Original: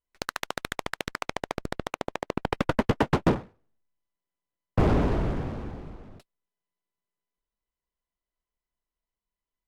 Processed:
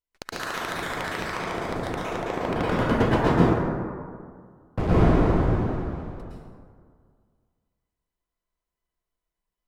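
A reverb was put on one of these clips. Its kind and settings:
dense smooth reverb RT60 2 s, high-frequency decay 0.4×, pre-delay 100 ms, DRR −8.5 dB
level −5 dB

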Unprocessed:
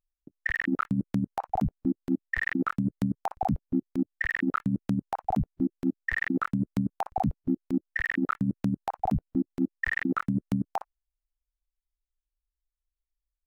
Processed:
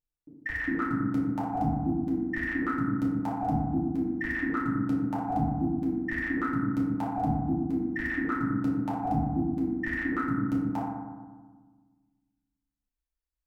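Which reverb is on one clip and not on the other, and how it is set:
feedback delay network reverb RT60 1.4 s, low-frequency decay 1.4×, high-frequency decay 0.3×, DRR −7 dB
level −8.5 dB

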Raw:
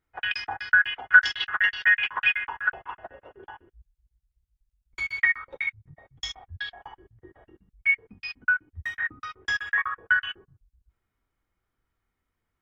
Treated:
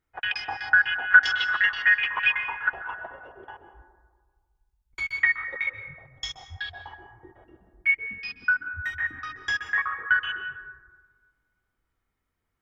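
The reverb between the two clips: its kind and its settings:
dense smooth reverb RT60 1.5 s, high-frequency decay 0.3×, pre-delay 120 ms, DRR 8.5 dB

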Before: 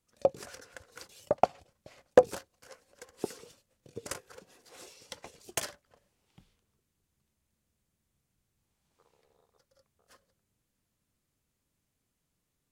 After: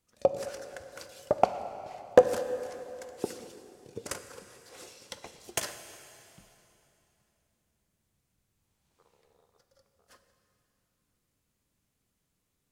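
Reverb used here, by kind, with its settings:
dense smooth reverb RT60 3.1 s, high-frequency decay 0.9×, DRR 8.5 dB
level +1.5 dB

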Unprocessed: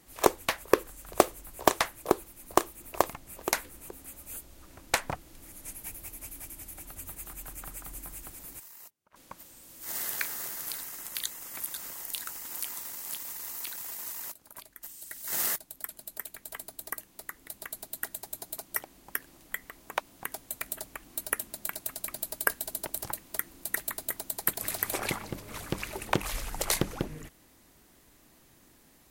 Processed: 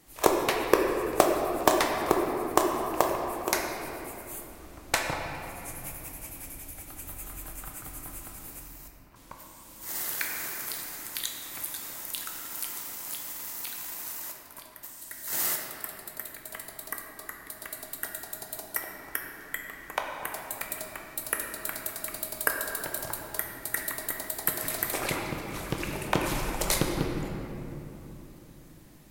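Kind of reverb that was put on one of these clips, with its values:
rectangular room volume 190 cubic metres, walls hard, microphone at 0.45 metres

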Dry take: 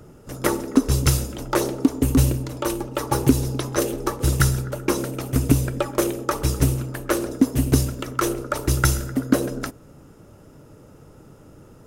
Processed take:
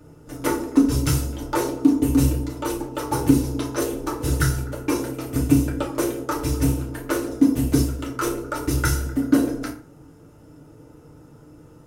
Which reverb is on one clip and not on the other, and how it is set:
feedback delay network reverb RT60 0.42 s, low-frequency decay 1.25×, high-frequency decay 0.7×, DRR −3.5 dB
level −7 dB

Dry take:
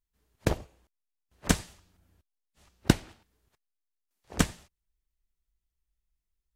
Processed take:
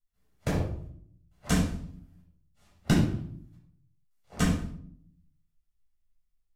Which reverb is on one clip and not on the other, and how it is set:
rectangular room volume 910 cubic metres, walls furnished, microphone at 7 metres
level −9.5 dB

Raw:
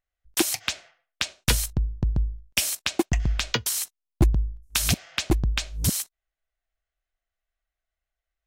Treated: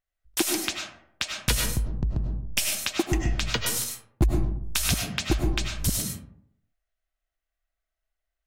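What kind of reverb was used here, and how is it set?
comb and all-pass reverb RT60 0.68 s, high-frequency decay 0.4×, pre-delay 60 ms, DRR 1.5 dB
level −2.5 dB

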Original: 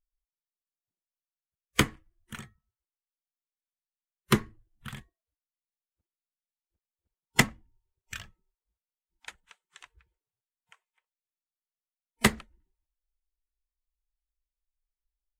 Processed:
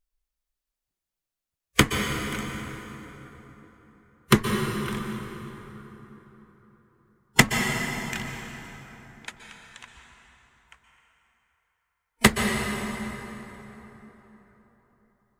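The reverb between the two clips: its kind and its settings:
dense smooth reverb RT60 4 s, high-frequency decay 0.6×, pre-delay 110 ms, DRR 2.5 dB
level +5 dB

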